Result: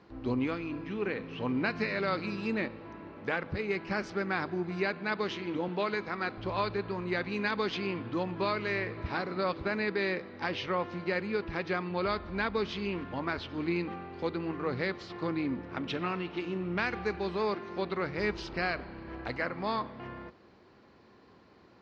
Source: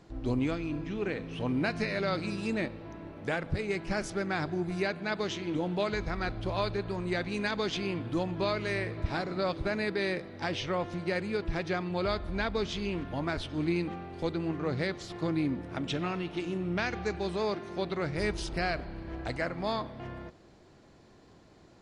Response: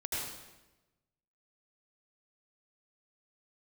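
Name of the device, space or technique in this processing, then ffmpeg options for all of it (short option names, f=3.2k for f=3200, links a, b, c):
guitar cabinet: -filter_complex "[0:a]highpass=90,equalizer=f=100:t=q:w=4:g=-5,equalizer=f=150:t=q:w=4:g=-9,equalizer=f=310:t=q:w=4:g=-4,equalizer=f=660:t=q:w=4:g=-6,equalizer=f=1.1k:t=q:w=4:g=3,equalizer=f=3.5k:t=q:w=4:g=-5,lowpass=f=4.6k:w=0.5412,lowpass=f=4.6k:w=1.3066,asettb=1/sr,asplit=3[a][b][c];[a]atrim=end=5.684[d];[b]atrim=start=5.68:end=6.38,asetpts=PTS-STARTPTS,afade=t=in:d=0.004:c=qsin,afade=t=out:st=0.696:d=0.004:c=qsin,highpass=170[e];[c]atrim=start=6.376[f];[d][e]acrossfade=d=0.004:c1=hsin:c2=qsin[g];[g][f]acrossfade=d=0.004:c1=qsin:c2=hsin,volume=1.5dB"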